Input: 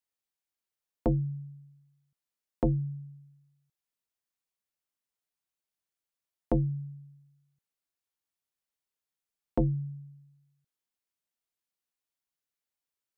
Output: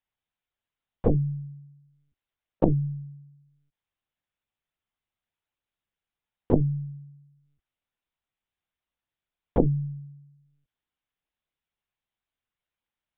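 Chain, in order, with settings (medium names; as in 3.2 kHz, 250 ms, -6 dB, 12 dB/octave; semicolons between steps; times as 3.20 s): LPC vocoder at 8 kHz pitch kept; trim +5 dB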